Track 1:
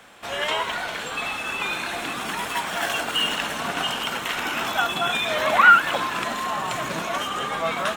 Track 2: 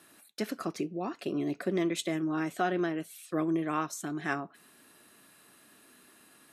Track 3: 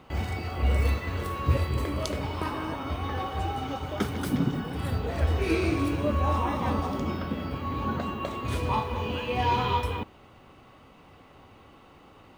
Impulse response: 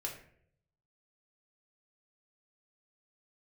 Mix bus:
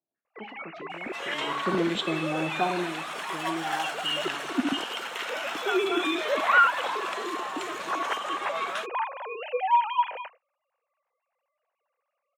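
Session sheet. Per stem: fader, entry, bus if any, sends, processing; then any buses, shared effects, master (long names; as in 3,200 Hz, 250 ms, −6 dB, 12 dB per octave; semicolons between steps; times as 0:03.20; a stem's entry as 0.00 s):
−7.5 dB, 0.90 s, no send, meter weighting curve A
0:01.34 −18.5 dB → 0:01.69 −6 dB → 0:02.57 −6 dB → 0:03.15 −15.5 dB, 0.00 s, send −3.5 dB, low-shelf EQ 330 Hz +7 dB; low-pass on a step sequencer 6.9 Hz 720–3,500 Hz
−4.0 dB, 0.25 s, no send, three sine waves on the formant tracks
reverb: on, RT60 0.65 s, pre-delay 5 ms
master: noise gate −49 dBFS, range −22 dB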